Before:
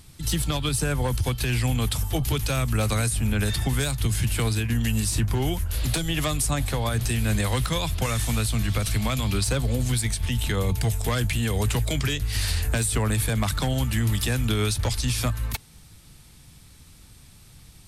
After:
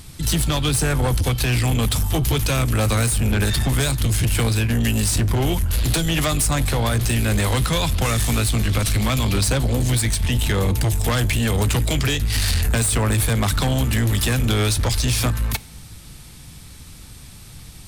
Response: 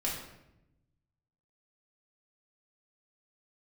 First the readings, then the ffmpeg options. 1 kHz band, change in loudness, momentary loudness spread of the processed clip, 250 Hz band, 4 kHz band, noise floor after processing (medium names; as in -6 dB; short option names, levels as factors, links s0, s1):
+5.0 dB, +5.0 dB, 2 LU, +5.0 dB, +5.0 dB, -41 dBFS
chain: -filter_complex "[0:a]asoftclip=type=tanh:threshold=0.0631,asplit=2[s0][s1];[1:a]atrim=start_sample=2205[s2];[s1][s2]afir=irnorm=-1:irlink=0,volume=0.0668[s3];[s0][s3]amix=inputs=2:normalize=0,volume=2.66"